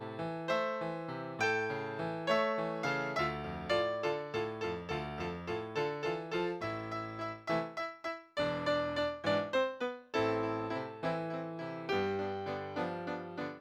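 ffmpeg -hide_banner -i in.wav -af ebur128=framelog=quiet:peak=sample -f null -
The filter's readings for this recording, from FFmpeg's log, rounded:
Integrated loudness:
  I:         -35.9 LUFS
  Threshold: -45.9 LUFS
Loudness range:
  LRA:         3.1 LU
  Threshold: -55.7 LUFS
  LRA low:   -37.6 LUFS
  LRA high:  -34.5 LUFS
Sample peak:
  Peak:      -18.7 dBFS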